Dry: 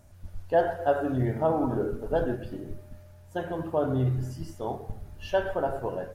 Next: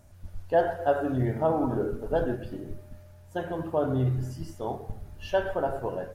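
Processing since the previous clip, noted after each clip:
no processing that can be heard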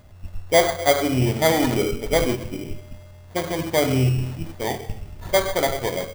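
sample-rate reduction 2,700 Hz, jitter 0%
level +6.5 dB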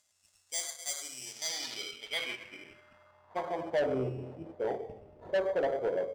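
band-pass filter sweep 7,300 Hz → 500 Hz, 0:01.20–0:04.00
soft clipping −24.5 dBFS, distortion −8 dB

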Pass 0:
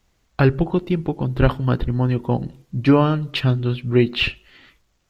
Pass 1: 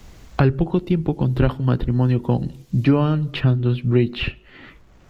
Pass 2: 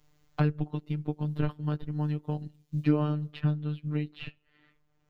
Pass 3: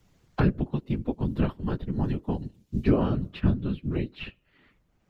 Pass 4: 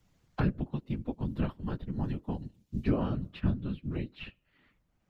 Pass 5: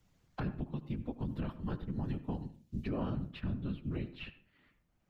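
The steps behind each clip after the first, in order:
low-shelf EQ 480 Hz +6 dB; multiband upward and downward compressor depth 70%; level −4.5 dB
phases set to zero 150 Hz; expander for the loud parts 1.5 to 1, over −37 dBFS; level −7 dB
random phases in short frames; level +3 dB
parametric band 400 Hz −4 dB 0.46 octaves; level −5.5 dB
brickwall limiter −26 dBFS, peak gain reduction 10.5 dB; convolution reverb RT60 0.40 s, pre-delay 70 ms, DRR 13.5 dB; level −2 dB

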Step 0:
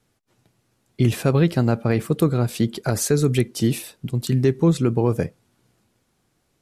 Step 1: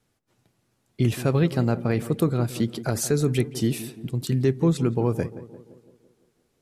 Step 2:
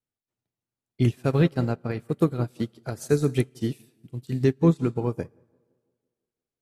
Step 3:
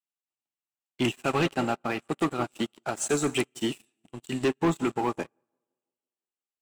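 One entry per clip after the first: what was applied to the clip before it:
tape delay 171 ms, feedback 64%, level −11.5 dB, low-pass 1,000 Hz; level −3.5 dB
on a send at −12 dB: convolution reverb RT60 1.8 s, pre-delay 5 ms; on the sum: expander for the loud parts 2.5 to 1, over −34 dBFS; level +3 dB
loudspeaker in its box 330–9,500 Hz, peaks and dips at 470 Hz −9 dB, 810 Hz +6 dB, 1,200 Hz +5 dB, 2,800 Hz +10 dB, 4,700 Hz −7 dB, 7,700 Hz +10 dB; leveller curve on the samples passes 3; level −5 dB

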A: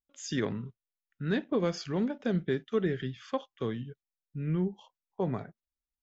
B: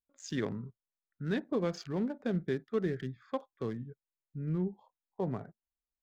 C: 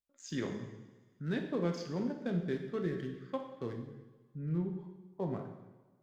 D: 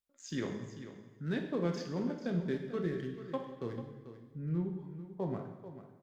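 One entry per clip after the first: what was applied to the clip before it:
adaptive Wiener filter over 15 samples; level −3 dB
coupled-rooms reverb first 1 s, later 2.5 s, from −19 dB, DRR 3 dB; level −3.5 dB
single-tap delay 441 ms −12.5 dB

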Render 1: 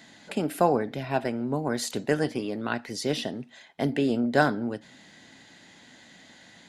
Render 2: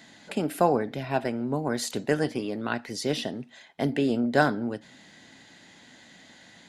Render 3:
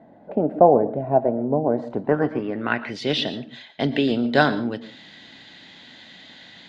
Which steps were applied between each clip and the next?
no processing that can be heard
low-pass filter sweep 650 Hz → 3,700 Hz, 0:01.70–0:03.17; convolution reverb RT60 0.25 s, pre-delay 110 ms, DRR 14.5 dB; level +3.5 dB

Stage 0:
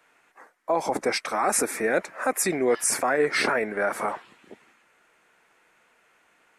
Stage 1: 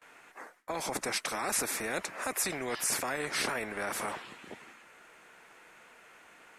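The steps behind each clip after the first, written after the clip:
noise gate with hold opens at −55 dBFS
every bin compressed towards the loudest bin 2 to 1
level −6.5 dB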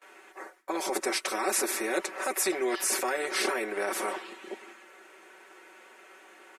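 low shelf with overshoot 220 Hz −14 dB, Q 3
comb filter 5.3 ms, depth 86%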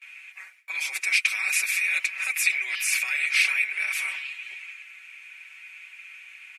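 high-pass with resonance 2,400 Hz, resonance Q 10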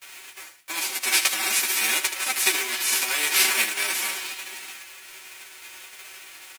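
spectral envelope flattened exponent 0.3
ambience of single reflections 13 ms −4 dB, 77 ms −9 dB

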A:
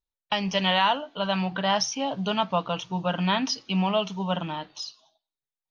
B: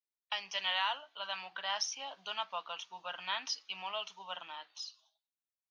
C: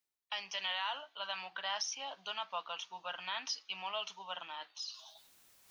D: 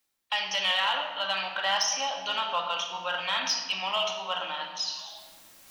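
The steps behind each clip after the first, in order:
high-pass filter 1,100 Hz 12 dB per octave; level −8 dB
brickwall limiter −26 dBFS, peak gain reduction 5.5 dB; reversed playback; upward compression, threshold −40 dBFS; reversed playback
convolution reverb RT60 1.5 s, pre-delay 4 ms, DRR 1 dB; in parallel at −6 dB: hard clipping −31 dBFS, distortion −16 dB; on the sum: level +6 dB

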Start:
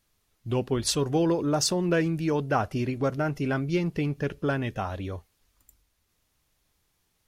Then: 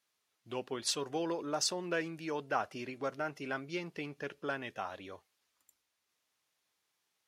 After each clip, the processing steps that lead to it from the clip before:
meter weighting curve A
level −6.5 dB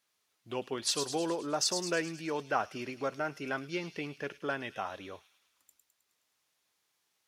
delay with a high-pass on its return 105 ms, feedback 58%, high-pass 4,200 Hz, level −5 dB
level +2.5 dB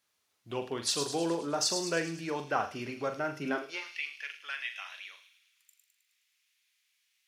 high-pass filter sweep 64 Hz → 2,300 Hz, 0:03.27–0:03.94
flutter between parallel walls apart 7.2 metres, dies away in 0.3 s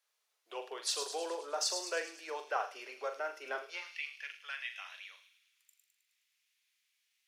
Butterworth high-pass 430 Hz 36 dB per octave
level −4 dB

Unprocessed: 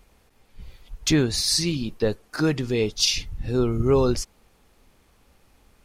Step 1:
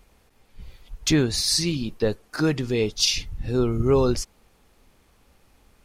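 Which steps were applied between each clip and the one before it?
no processing that can be heard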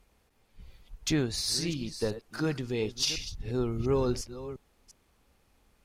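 delay that plays each chunk backwards 351 ms, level −13 dB
harmonic generator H 4 −28 dB, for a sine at −6 dBFS
level −8 dB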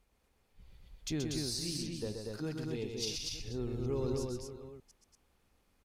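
dynamic equaliser 1,400 Hz, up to −7 dB, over −49 dBFS, Q 0.71
loudspeakers that aren't time-aligned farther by 44 metres −5 dB, 82 metres −3 dB
level −8 dB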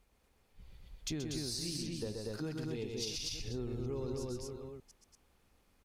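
downward compressor, threshold −37 dBFS, peak gain reduction 7.5 dB
level +2 dB

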